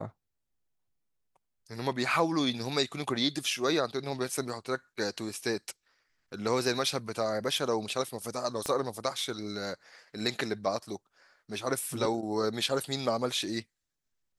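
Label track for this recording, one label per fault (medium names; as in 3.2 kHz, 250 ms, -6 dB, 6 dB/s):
8.660000	8.660000	pop -18 dBFS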